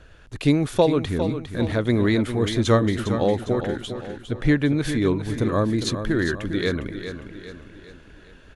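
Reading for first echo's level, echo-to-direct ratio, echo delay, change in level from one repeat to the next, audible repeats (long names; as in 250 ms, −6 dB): −9.5 dB, −8.5 dB, 405 ms, −6.5 dB, 5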